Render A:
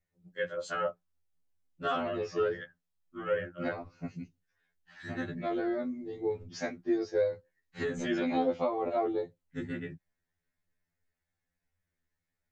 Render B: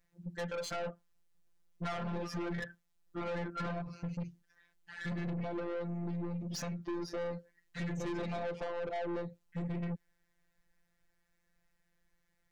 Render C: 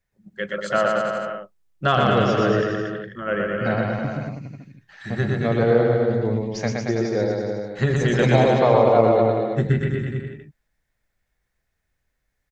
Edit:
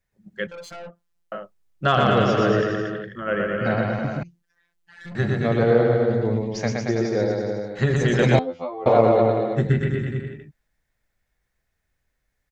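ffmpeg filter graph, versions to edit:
-filter_complex "[1:a]asplit=2[a][b];[2:a]asplit=4[c][d][e][f];[c]atrim=end=0.472[g];[a]atrim=start=0.468:end=1.322[h];[d]atrim=start=1.318:end=4.232[i];[b]atrim=start=4.228:end=5.152[j];[e]atrim=start=5.148:end=8.392[k];[0:a]atrim=start=8.388:end=8.862[l];[f]atrim=start=8.858[m];[g][h]acrossfade=d=0.004:c1=hsin:c2=hsin[n];[n][i]acrossfade=d=0.004:c1=hsin:c2=hsin[o];[o][j]acrossfade=d=0.004:c1=hsin:c2=hsin[p];[p][k]acrossfade=d=0.004:c1=hsin:c2=hsin[q];[q][l]acrossfade=d=0.004:c1=hsin:c2=hsin[r];[r][m]acrossfade=d=0.004:c1=hsin:c2=hsin"

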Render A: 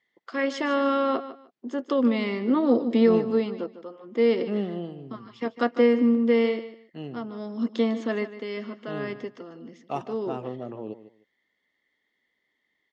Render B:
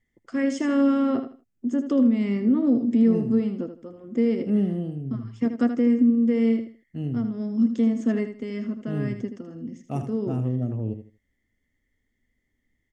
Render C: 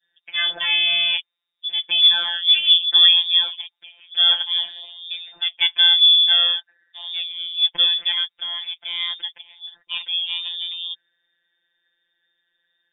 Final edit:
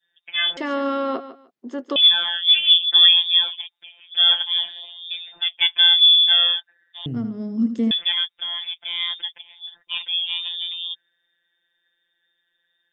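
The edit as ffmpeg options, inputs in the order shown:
-filter_complex "[2:a]asplit=3[a][b][c];[a]atrim=end=0.572[d];[0:a]atrim=start=0.568:end=1.962[e];[b]atrim=start=1.958:end=7.062[f];[1:a]atrim=start=7.058:end=7.912[g];[c]atrim=start=7.908[h];[d][e]acrossfade=d=0.004:c1=hsin:c2=hsin[i];[i][f]acrossfade=d=0.004:c1=hsin:c2=hsin[j];[j][g]acrossfade=d=0.004:c1=hsin:c2=hsin[k];[k][h]acrossfade=d=0.004:c1=hsin:c2=hsin"

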